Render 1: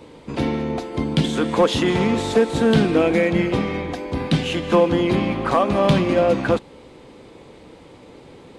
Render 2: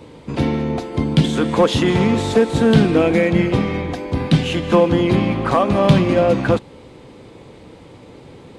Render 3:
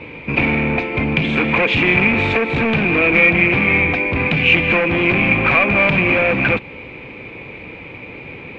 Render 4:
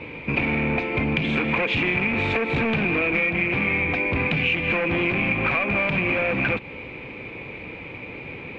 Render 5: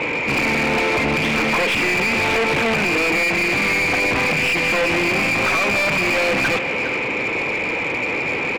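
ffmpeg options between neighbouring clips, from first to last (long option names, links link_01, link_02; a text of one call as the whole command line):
ffmpeg -i in.wav -af "equalizer=frequency=110:width=0.97:gain=6,volume=1.5dB" out.wav
ffmpeg -i in.wav -af "acompressor=threshold=-15dB:ratio=4,volume=20dB,asoftclip=hard,volume=-20dB,lowpass=frequency=2400:width_type=q:width=15,volume=4dB" out.wav
ffmpeg -i in.wav -af "acompressor=threshold=-17dB:ratio=6,volume=-2.5dB" out.wav
ffmpeg -i in.wav -filter_complex "[0:a]aeval=exprs='clip(val(0),-1,0.0237)':channel_layout=same,aecho=1:1:406:0.126,asplit=2[link_01][link_02];[link_02]highpass=frequency=720:poles=1,volume=28dB,asoftclip=type=tanh:threshold=-8.5dB[link_03];[link_01][link_03]amix=inputs=2:normalize=0,lowpass=frequency=2000:poles=1,volume=-6dB" out.wav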